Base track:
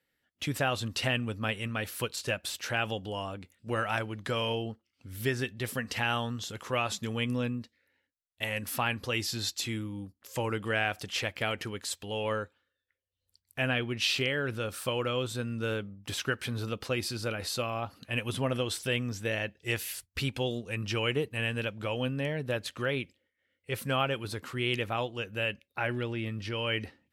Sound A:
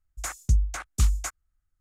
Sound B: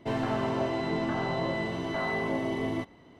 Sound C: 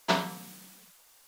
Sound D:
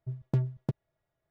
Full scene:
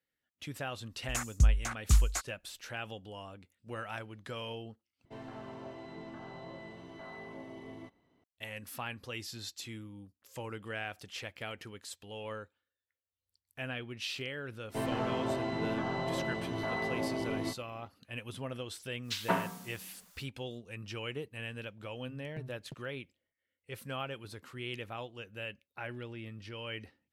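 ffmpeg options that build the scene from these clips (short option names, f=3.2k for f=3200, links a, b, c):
-filter_complex "[2:a]asplit=2[a][b];[0:a]volume=-10dB[c];[3:a]acrossover=split=2400[d][e];[d]adelay=180[f];[f][e]amix=inputs=2:normalize=0[g];[4:a]acompressor=threshold=-26dB:ratio=6:attack=3.2:release=140:knee=1:detection=peak[h];[c]asplit=2[i][j];[i]atrim=end=5.054[k];[a]atrim=end=3.19,asetpts=PTS-STARTPTS,volume=-16.5dB[l];[j]atrim=start=8.236[m];[1:a]atrim=end=1.8,asetpts=PTS-STARTPTS,volume=-2.5dB,afade=t=in:d=0.004:c=hsin,afade=t=out:st=1.796:d=0.004:c=hsin,adelay=910[n];[b]atrim=end=3.19,asetpts=PTS-STARTPTS,volume=-4.5dB,afade=t=in:d=0.004:c=hsin,afade=t=out:st=3.186:d=0.004:c=hsin,adelay=14690[o];[g]atrim=end=1.27,asetpts=PTS-STARTPTS,volume=-2.5dB,afade=t=in:d=0.1,afade=t=out:st=1.17:d=0.1,adelay=19020[p];[h]atrim=end=1.3,asetpts=PTS-STARTPTS,volume=-14dB,afade=t=in:d=0.004:c=hsin,afade=t=out:st=1.296:d=0.004:c=hsin,adelay=22030[q];[k][l]acrossfade=d=0.004:c1=hsin:c2=hsin[r];[r][m]acrossfade=d=0.004:c1=hsin:c2=hsin[s];[s][n][o][p][q]amix=inputs=5:normalize=0"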